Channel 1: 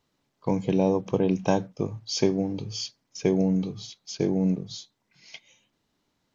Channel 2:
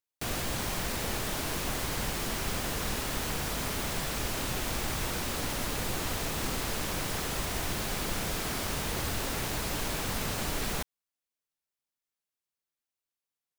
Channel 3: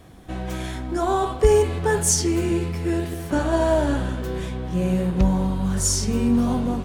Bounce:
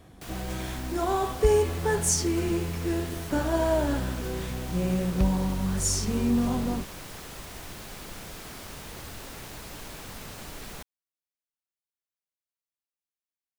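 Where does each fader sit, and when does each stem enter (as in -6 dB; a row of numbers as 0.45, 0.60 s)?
off, -8.5 dB, -5.0 dB; off, 0.00 s, 0.00 s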